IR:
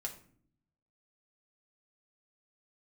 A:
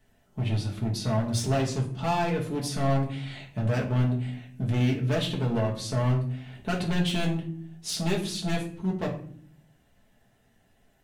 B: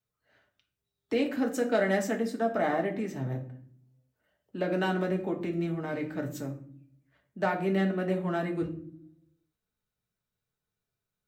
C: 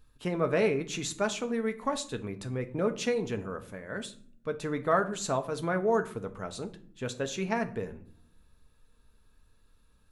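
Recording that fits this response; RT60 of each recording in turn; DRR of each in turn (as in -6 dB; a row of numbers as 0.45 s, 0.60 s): B; 0.55 s, 0.55 s, 0.55 s; -3.0 dB, 1.0 dB, 6.5 dB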